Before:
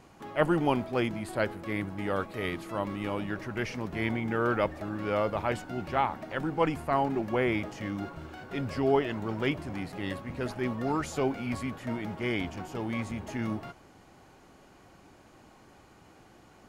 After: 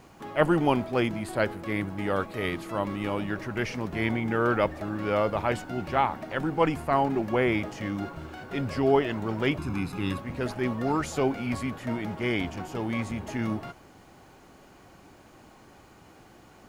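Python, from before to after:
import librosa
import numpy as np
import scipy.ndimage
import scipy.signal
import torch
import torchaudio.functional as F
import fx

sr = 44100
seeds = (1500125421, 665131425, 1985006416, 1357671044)

y = fx.comb(x, sr, ms=0.8, depth=0.74, at=(9.58, 10.18))
y = fx.quant_dither(y, sr, seeds[0], bits=12, dither='none')
y = y * 10.0 ** (3.0 / 20.0)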